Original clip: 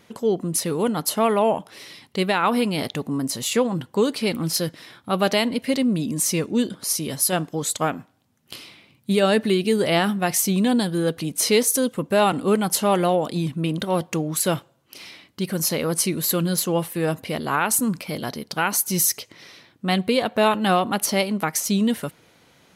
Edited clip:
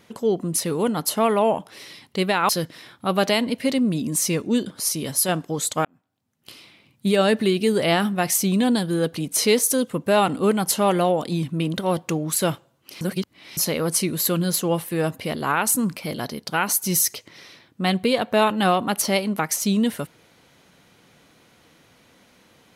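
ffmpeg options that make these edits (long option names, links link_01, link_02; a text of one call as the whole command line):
ffmpeg -i in.wav -filter_complex "[0:a]asplit=5[link_01][link_02][link_03][link_04][link_05];[link_01]atrim=end=2.492[link_06];[link_02]atrim=start=4.528:end=7.89,asetpts=PTS-STARTPTS,afade=type=out:start_time=3.358:duration=0.004:curve=hsin[link_07];[link_03]atrim=start=7.89:end=15.052,asetpts=PTS-STARTPTS,afade=type=in:duration=1.21[link_08];[link_04]atrim=start=15.048:end=15.612,asetpts=PTS-STARTPTS,areverse[link_09];[link_05]atrim=start=15.608[link_10];[link_07][link_08]concat=n=2:v=0:a=1[link_11];[link_06][link_11]acrossfade=duration=0.004:curve1=hsin:curve2=hsin[link_12];[link_12][link_09]acrossfade=duration=0.004:curve1=hsin:curve2=hsin[link_13];[link_13][link_10]acrossfade=duration=0.004:curve1=hsin:curve2=hsin" out.wav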